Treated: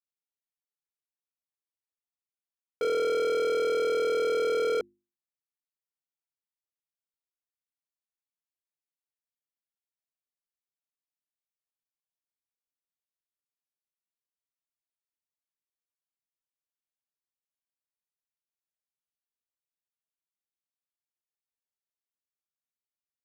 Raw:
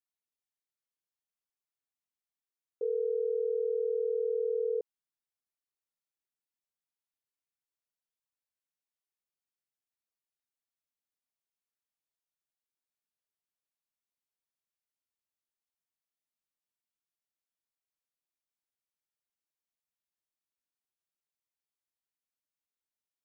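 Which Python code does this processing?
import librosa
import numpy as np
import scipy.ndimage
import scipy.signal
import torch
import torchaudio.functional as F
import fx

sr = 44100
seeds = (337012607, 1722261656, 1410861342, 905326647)

y = fx.leveller(x, sr, passes=5)
y = fx.hum_notches(y, sr, base_hz=50, count=7)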